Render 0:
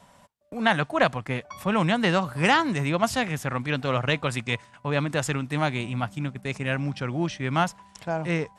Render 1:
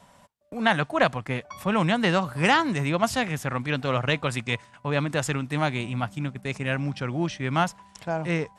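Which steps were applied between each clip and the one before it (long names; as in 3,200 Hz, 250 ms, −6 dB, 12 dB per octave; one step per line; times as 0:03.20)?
no processing that can be heard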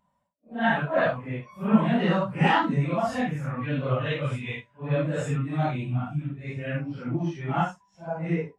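random phases in long frames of 200 ms
every bin expanded away from the loudest bin 1.5 to 1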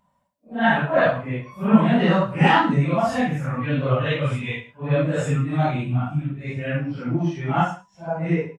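slap from a distant wall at 18 metres, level −15 dB
level +5 dB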